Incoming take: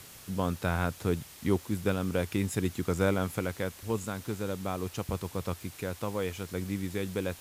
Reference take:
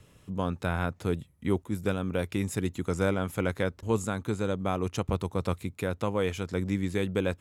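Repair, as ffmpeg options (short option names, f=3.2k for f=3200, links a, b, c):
-af "adeclick=t=4,afwtdn=0.0035,asetnsamples=n=441:p=0,asendcmd='3.39 volume volume 4.5dB',volume=0dB"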